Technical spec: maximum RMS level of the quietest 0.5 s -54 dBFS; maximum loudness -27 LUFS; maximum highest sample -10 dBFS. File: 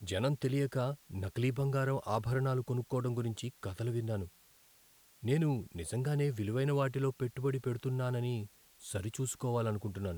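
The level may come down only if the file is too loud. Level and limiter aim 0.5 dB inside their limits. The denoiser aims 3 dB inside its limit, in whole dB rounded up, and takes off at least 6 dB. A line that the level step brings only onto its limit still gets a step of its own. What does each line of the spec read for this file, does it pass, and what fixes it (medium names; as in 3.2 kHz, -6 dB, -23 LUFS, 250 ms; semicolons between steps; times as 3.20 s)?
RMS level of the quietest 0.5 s -64 dBFS: pass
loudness -35.0 LUFS: pass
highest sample -19.0 dBFS: pass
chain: none needed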